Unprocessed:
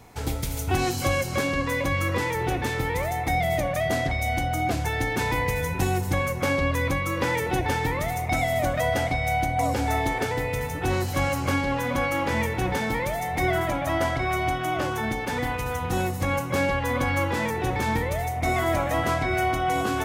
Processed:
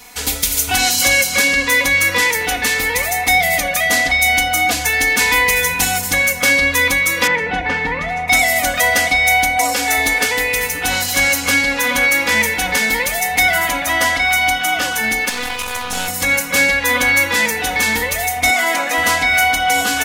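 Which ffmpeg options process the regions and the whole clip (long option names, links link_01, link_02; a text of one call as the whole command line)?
ffmpeg -i in.wav -filter_complex "[0:a]asettb=1/sr,asplit=3[link_01][link_02][link_03];[link_01]atrim=end=7.274[link_04];[link_02]atrim=start=7.27:end=8.28,asetpts=PTS-STARTPTS,afade=type=in:duration=0.004:curve=qsin,afade=type=out:start_time=1.006:duration=0.004:curve=qsin,lowpass=2100,equalizer=frequency=170:width=3.3:gain=7.5[link_05];[link_03]atrim=start=8.276[link_06];[link_04][link_05]acrossfade=duration=0.004:curve1=hsin:curve2=qsin[link_07];[link_07][link_06]acrossfade=duration=0.004:curve1=qsin:curve2=hsin,asettb=1/sr,asplit=3[link_08][link_09][link_10];[link_08]atrim=end=9.584[link_11];[link_09]atrim=start=9.58:end=9.98,asetpts=PTS-STARTPTS,afade=type=in:duration=0.004:curve=qsin,afade=type=out:start_time=0.396:duration=0.004:curve=qsin,highpass=46,equalizer=frequency=81:width_type=o:width=2.4:gain=-9[link_12];[link_10]atrim=start=9.976[link_13];[link_11][link_12]acrossfade=duration=0.004:curve1=hsin:curve2=qsin[link_14];[link_14][link_13]acrossfade=duration=0.004:curve1=qsin:curve2=hsin,asettb=1/sr,asplit=3[link_15][link_16][link_17];[link_15]atrim=end=15.294[link_18];[link_16]atrim=start=15.29:end=16.08,asetpts=PTS-STARTPTS,afade=type=in:duration=0.004:curve=qsin,afade=type=out:start_time=0.786:duration=0.004:curve=qsin,lowpass=11000,equalizer=frequency=1900:width_type=o:width=0.24:gain=-7,aeval=exprs='max(val(0),0)':channel_layout=same[link_19];[link_17]atrim=start=16.076[link_20];[link_18][link_19]acrossfade=duration=0.004:curve1=hsin:curve2=qsin[link_21];[link_21][link_20]acrossfade=duration=0.004:curve1=qsin:curve2=hsin,asettb=1/sr,asplit=3[link_22][link_23][link_24];[link_22]atrim=end=18.504[link_25];[link_23]atrim=start=18.5:end=18.98,asetpts=PTS-STARTPTS,afade=type=in:duration=0.004:curve=qsin,afade=type=out:start_time=0.476:duration=0.004:curve=qsin,highpass=frequency=200:width=0.5412,highpass=frequency=200:width=1.3066,highshelf=frequency=9000:gain=-8.5[link_26];[link_24]atrim=start=18.976[link_27];[link_25][link_26]acrossfade=duration=0.004:curve1=hsin:curve2=qsin[link_28];[link_28][link_27]acrossfade=duration=0.004:curve1=qsin:curve2=hsin,tiltshelf=frequency=1300:gain=-10,aecho=1:1:4.1:0.85,volume=7.5dB" out.wav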